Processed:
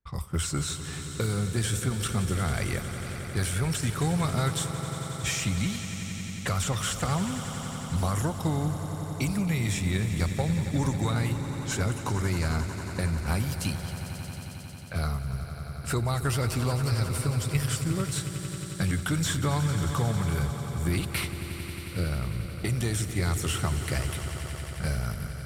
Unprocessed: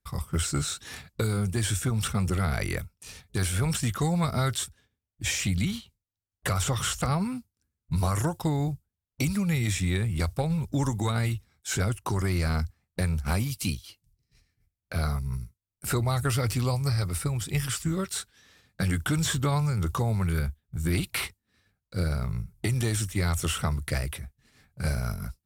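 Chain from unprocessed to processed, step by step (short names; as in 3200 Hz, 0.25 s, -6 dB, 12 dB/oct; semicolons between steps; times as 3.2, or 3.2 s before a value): low-pass opened by the level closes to 2100 Hz, open at -28 dBFS; on a send: swelling echo 90 ms, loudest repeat 5, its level -14 dB; on the sum: gain -1.5 dB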